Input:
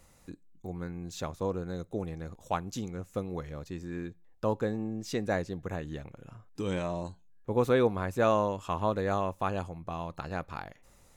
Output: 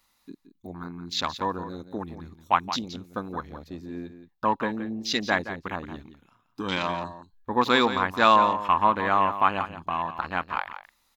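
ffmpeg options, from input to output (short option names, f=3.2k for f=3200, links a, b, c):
-filter_complex "[0:a]crystalizer=i=4.5:c=0,equalizer=f=125:t=o:w=1:g=-9,equalizer=f=250:t=o:w=1:g=7,equalizer=f=500:t=o:w=1:g=-6,equalizer=f=1k:t=o:w=1:g=12,equalizer=f=2k:t=o:w=1:g=4,equalizer=f=4k:t=o:w=1:g=11,equalizer=f=8k:t=o:w=1:g=-11,afwtdn=0.0224,asplit=2[a][b];[b]aecho=0:1:172:0.266[c];[a][c]amix=inputs=2:normalize=0"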